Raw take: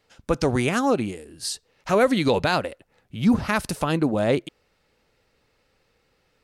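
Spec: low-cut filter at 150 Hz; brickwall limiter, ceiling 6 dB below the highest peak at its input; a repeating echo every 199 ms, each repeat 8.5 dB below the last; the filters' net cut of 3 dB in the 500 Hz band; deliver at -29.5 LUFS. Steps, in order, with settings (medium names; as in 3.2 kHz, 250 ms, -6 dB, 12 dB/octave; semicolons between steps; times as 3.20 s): high-pass 150 Hz; peaking EQ 500 Hz -3.5 dB; peak limiter -14.5 dBFS; feedback delay 199 ms, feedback 38%, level -8.5 dB; trim -3 dB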